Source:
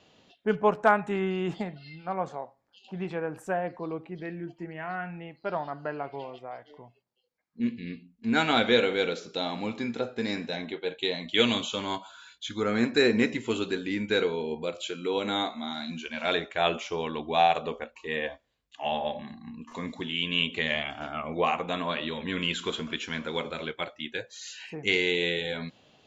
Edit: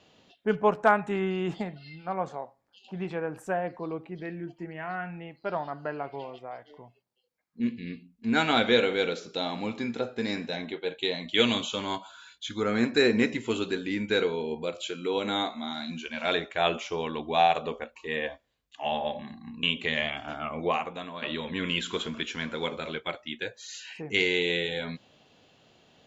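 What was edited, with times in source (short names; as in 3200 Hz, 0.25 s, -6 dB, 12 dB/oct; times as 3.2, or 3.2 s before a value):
19.63–20.36 cut
21.38–21.95 fade out quadratic, to -9.5 dB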